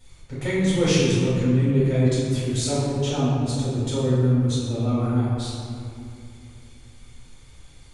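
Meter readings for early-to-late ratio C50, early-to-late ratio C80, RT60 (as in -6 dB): -2.5 dB, 0.0 dB, 2.5 s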